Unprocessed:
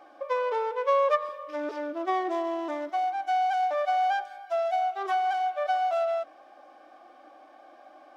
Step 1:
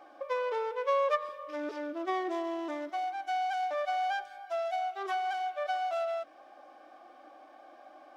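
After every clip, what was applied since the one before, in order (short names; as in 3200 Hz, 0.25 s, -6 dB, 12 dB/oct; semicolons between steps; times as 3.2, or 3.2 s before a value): dynamic EQ 800 Hz, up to -5 dB, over -39 dBFS, Q 1; gain -1.5 dB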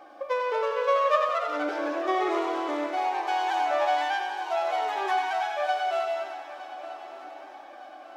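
thinning echo 95 ms, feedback 63%, high-pass 420 Hz, level -6 dB; echoes that change speed 0.357 s, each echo +2 st, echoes 3, each echo -6 dB; swung echo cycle 1.211 s, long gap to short 3:1, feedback 41%, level -15 dB; gain +4.5 dB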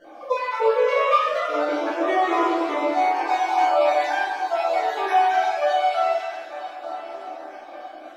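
random spectral dropouts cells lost 35%; reverb RT60 0.75 s, pre-delay 6 ms, DRR -6.5 dB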